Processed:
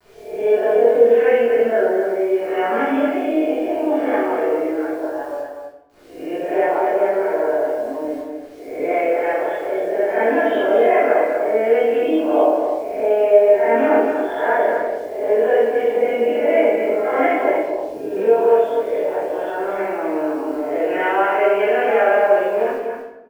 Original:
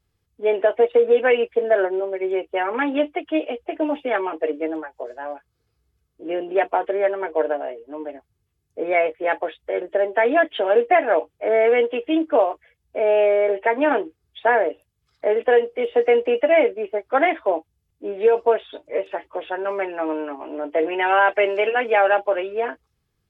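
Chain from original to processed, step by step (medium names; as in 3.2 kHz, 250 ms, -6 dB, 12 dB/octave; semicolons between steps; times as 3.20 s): reverse spectral sustain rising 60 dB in 0.64 s; low-pass 1.2 kHz 6 dB/octave; de-hum 250.9 Hz, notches 3; in parallel at 0 dB: compression 6:1, threshold -31 dBFS, peak gain reduction 18 dB; on the sum: bit crusher 8-bit; doubling 26 ms -6 dB; on a send: delay 243 ms -6.5 dB; on the sum: simulated room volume 260 m³, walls mixed, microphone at 3.2 m; trim -11 dB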